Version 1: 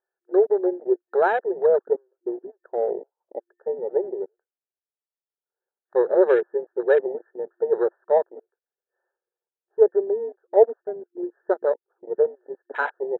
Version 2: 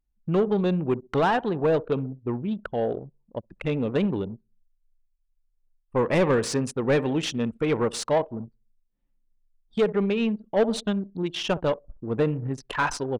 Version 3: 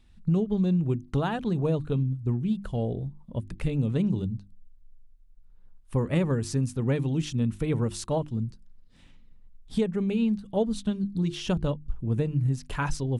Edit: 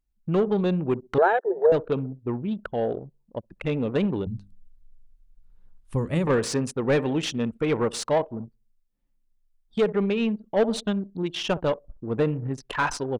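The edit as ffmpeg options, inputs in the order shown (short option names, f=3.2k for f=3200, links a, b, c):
-filter_complex "[1:a]asplit=3[a][b][c];[a]atrim=end=1.182[d];[0:a]atrim=start=1.178:end=1.722[e];[b]atrim=start=1.718:end=4.272[f];[2:a]atrim=start=4.268:end=6.272[g];[c]atrim=start=6.268[h];[d][e]acrossfade=d=0.004:c1=hsin:c2=hsin[i];[i][f]acrossfade=d=0.004:c1=hsin:c2=hsin[j];[j][g]acrossfade=d=0.004:c1=hsin:c2=hsin[k];[k][h]acrossfade=d=0.004:c1=hsin:c2=hsin"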